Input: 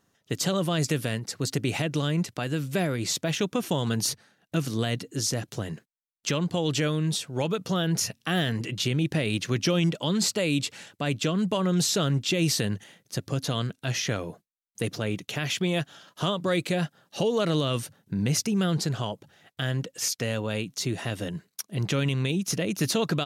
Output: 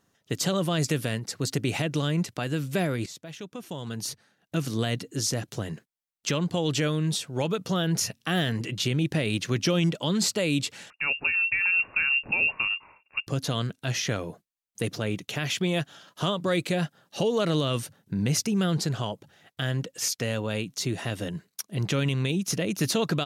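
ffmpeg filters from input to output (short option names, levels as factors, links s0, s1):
-filter_complex "[0:a]asettb=1/sr,asplit=3[s0][s1][s2];[s0]atrim=end=10.904[s3];[s1]atrim=start=10.9:end=13.27,asetpts=PTS-STARTPTS,afade=t=in:d=0.004:c=qsin,afade=t=out:st=2.366:d=0.004:c=qsin,lowpass=f=2500:t=q:w=0.5098,lowpass=f=2500:t=q:w=0.6013,lowpass=f=2500:t=q:w=0.9,lowpass=f=2500:t=q:w=2.563,afreqshift=-2900[s4];[s2]atrim=start=13.266[s5];[s3][s4]acrossfade=d=0.004:c1=hsin:c2=qsin[s6];[s6][s5]acrossfade=d=0.004:c1=qsin:c2=hsin,asplit=2[s7][s8];[s7]atrim=end=3.06,asetpts=PTS-STARTPTS,afade=t=out:st=3.056:d=0.004:c=hsin:silence=0.188365[s9];[s8]atrim=start=3.06,asetpts=PTS-STARTPTS,afade=t=in:d=1.65:c=qua:silence=0.188365[s10];[s9][s10]concat=n=2:v=0:a=1"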